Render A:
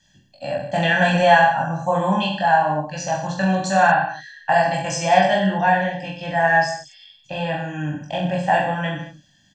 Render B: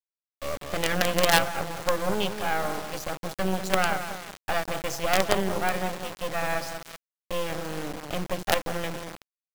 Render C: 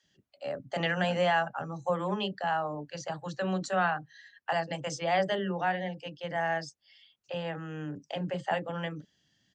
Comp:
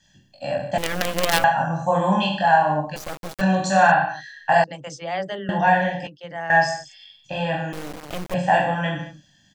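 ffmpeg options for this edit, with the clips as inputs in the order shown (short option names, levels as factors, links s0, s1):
-filter_complex "[1:a]asplit=3[s0][s1][s2];[2:a]asplit=2[s3][s4];[0:a]asplit=6[s5][s6][s7][s8][s9][s10];[s5]atrim=end=0.782[s11];[s0]atrim=start=0.778:end=1.442[s12];[s6]atrim=start=1.438:end=2.962[s13];[s1]atrim=start=2.958:end=3.412[s14];[s7]atrim=start=3.408:end=4.642[s15];[s3]atrim=start=4.638:end=5.492[s16];[s8]atrim=start=5.488:end=6.072[s17];[s4]atrim=start=6.068:end=6.502[s18];[s9]atrim=start=6.498:end=7.732[s19];[s2]atrim=start=7.728:end=8.342[s20];[s10]atrim=start=8.338[s21];[s11][s12]acrossfade=d=0.004:c1=hsin:c2=hsin[s22];[s22][s13]acrossfade=d=0.004:c1=hsin:c2=hsin[s23];[s23][s14]acrossfade=d=0.004:c1=hsin:c2=hsin[s24];[s24][s15]acrossfade=d=0.004:c1=hsin:c2=hsin[s25];[s25][s16]acrossfade=d=0.004:c1=hsin:c2=hsin[s26];[s26][s17]acrossfade=d=0.004:c1=hsin:c2=hsin[s27];[s27][s18]acrossfade=d=0.004:c1=hsin:c2=hsin[s28];[s28][s19]acrossfade=d=0.004:c1=hsin:c2=hsin[s29];[s29][s20]acrossfade=d=0.004:c1=hsin:c2=hsin[s30];[s30][s21]acrossfade=d=0.004:c1=hsin:c2=hsin"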